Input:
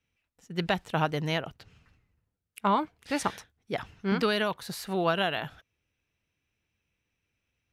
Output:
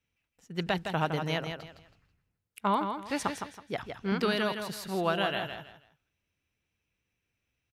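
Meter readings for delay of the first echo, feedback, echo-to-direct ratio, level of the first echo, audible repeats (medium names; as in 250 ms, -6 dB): 162 ms, 27%, -6.5 dB, -7.0 dB, 3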